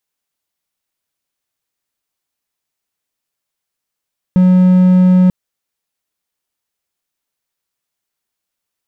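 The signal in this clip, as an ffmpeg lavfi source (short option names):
-f lavfi -i "aevalsrc='0.668*(1-4*abs(mod(183*t+0.25,1)-0.5))':d=0.94:s=44100"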